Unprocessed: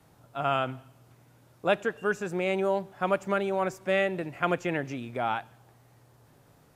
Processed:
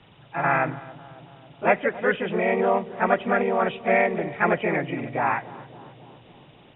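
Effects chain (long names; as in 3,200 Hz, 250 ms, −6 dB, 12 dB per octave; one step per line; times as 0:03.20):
hearing-aid frequency compression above 1,800 Hz 4 to 1
pitch-shifted copies added +3 semitones −2 dB, +4 semitones −5 dB
feedback echo with a low-pass in the loop 274 ms, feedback 74%, low-pass 1,100 Hz, level −17 dB
level +2.5 dB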